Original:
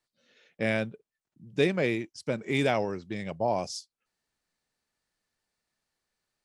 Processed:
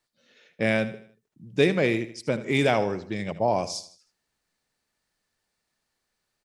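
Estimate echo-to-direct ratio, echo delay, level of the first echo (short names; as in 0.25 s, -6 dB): -13.0 dB, 78 ms, -14.0 dB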